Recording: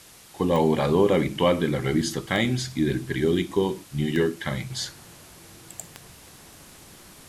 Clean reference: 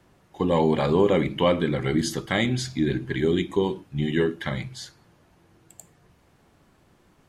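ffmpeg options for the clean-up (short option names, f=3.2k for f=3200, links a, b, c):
-af "adeclick=t=4,afwtdn=0.004,asetnsamples=n=441:p=0,asendcmd='4.7 volume volume -8dB',volume=0dB"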